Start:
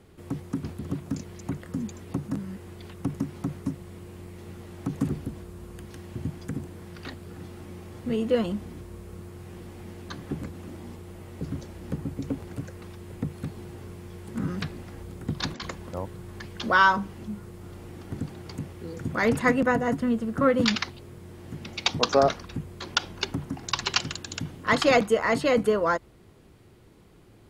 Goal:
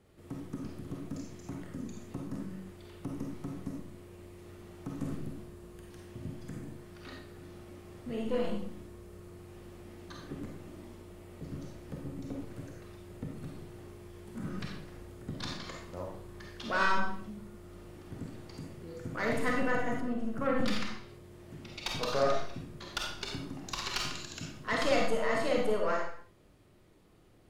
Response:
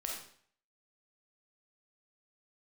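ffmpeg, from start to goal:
-filter_complex "[0:a]aeval=exprs='(tanh(5.62*val(0)+0.45)-tanh(0.45))/5.62':c=same[a];[1:a]atrim=start_sample=2205,afade=t=out:st=0.38:d=0.01,atrim=end_sample=17199,asetrate=41895,aresample=44100[b];[a][b]afir=irnorm=-1:irlink=0,asplit=3[c][d][e];[c]afade=t=out:st=20:d=0.02[f];[d]adynamicequalizer=threshold=0.00708:dfrequency=2200:dqfactor=0.7:tfrequency=2200:tqfactor=0.7:attack=5:release=100:ratio=0.375:range=3:mode=cutabove:tftype=highshelf,afade=t=in:st=20:d=0.02,afade=t=out:st=22.15:d=0.02[g];[e]afade=t=in:st=22.15:d=0.02[h];[f][g][h]amix=inputs=3:normalize=0,volume=-6dB"

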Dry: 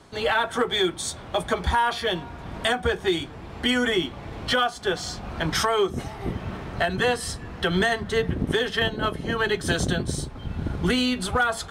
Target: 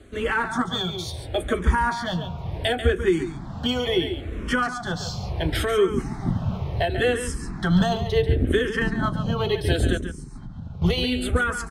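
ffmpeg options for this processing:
-filter_complex "[0:a]lowshelf=f=310:g=10.5,asettb=1/sr,asplit=3[a][b][c];[a]atrim=end=9.974[d];[b]atrim=start=9.97:end=10.82,asetpts=PTS-STARTPTS,afade=t=in:d=0.004:c=qsin,afade=t=out:st=0.846:d=0.004:c=qsin,acompressor=threshold=-31dB:ratio=6[e];[c]atrim=start=10.816[f];[d][e]acrossfade=d=0.004:c1=hsin:c2=qsin[g];[g][f]acrossfade=d=0.004:c1=qsin:c2=hsin,aecho=1:1:140:0.335,asplit=2[h][i];[i]afreqshift=-0.71[j];[h][j]amix=inputs=2:normalize=1"

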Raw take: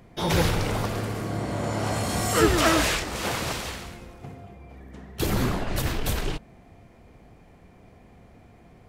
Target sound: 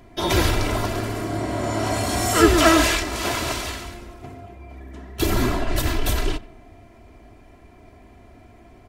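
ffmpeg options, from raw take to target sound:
-filter_complex "[0:a]aecho=1:1:3:0.65,asplit=2[a][b];[b]adelay=91,lowpass=f=2.1k:p=1,volume=-19dB,asplit=2[c][d];[d]adelay=91,lowpass=f=2.1k:p=1,volume=0.52,asplit=2[e][f];[f]adelay=91,lowpass=f=2.1k:p=1,volume=0.52,asplit=2[g][h];[h]adelay=91,lowpass=f=2.1k:p=1,volume=0.52[i];[a][c][e][g][i]amix=inputs=5:normalize=0,volume=2.5dB"

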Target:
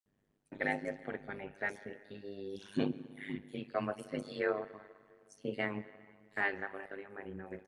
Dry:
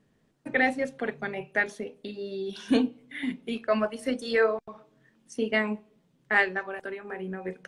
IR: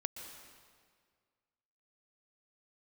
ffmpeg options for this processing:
-filter_complex "[0:a]acrossover=split=4700[a][b];[a]adelay=60[c];[c][b]amix=inputs=2:normalize=0,asplit=2[d][e];[1:a]atrim=start_sample=2205,highshelf=f=4.1k:g=-8.5[f];[e][f]afir=irnorm=-1:irlink=0,volume=-6dB[g];[d][g]amix=inputs=2:normalize=0,tremolo=f=100:d=0.919,volume=-9dB"

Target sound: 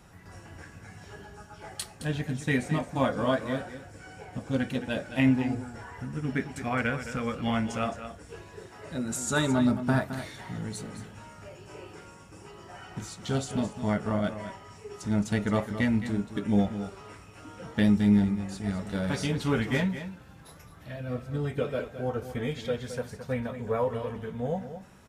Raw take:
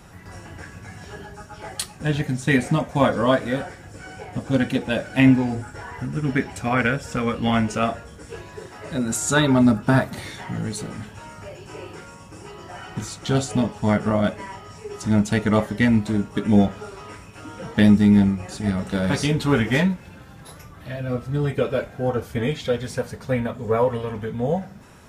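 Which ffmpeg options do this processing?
-af "aecho=1:1:216:0.282,volume=-8dB"

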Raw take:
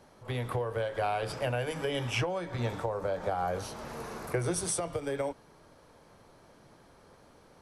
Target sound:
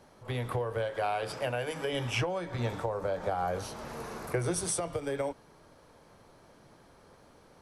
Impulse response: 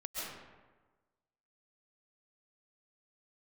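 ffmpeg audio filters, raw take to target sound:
-filter_complex "[0:a]asettb=1/sr,asplit=3[a][b][c];[a]atrim=end=0.904[d];[b]atrim=start=0.9:end=1.93,asetpts=PTS-STARTPTS,afade=t=in:d=0.004:c=qsin,afade=t=out:st=1.026:d=0.004:c=qsin,lowshelf=f=140:g=-9[e];[c]atrim=start=1.926[f];[d][e]acrossfade=d=0.004:c1=hsin:c2=qsin[g];[g][f]acrossfade=d=0.004:c1=qsin:c2=hsin"

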